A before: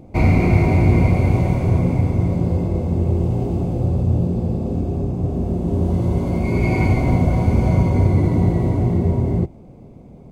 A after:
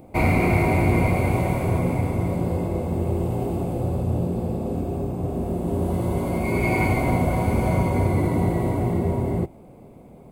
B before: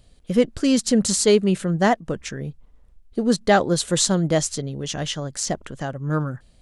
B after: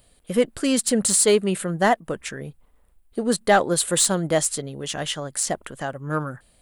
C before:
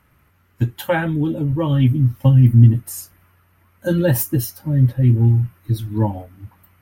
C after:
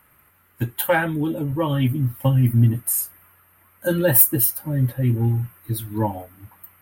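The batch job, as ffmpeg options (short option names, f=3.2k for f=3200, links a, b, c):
-filter_complex "[0:a]asplit=2[a][b];[b]highpass=f=720:p=1,volume=10dB,asoftclip=type=tanh:threshold=-1dB[c];[a][c]amix=inputs=2:normalize=0,lowpass=f=2.9k:p=1,volume=-6dB,aexciter=amount=5.9:drive=7.2:freq=8.3k,volume=-2dB"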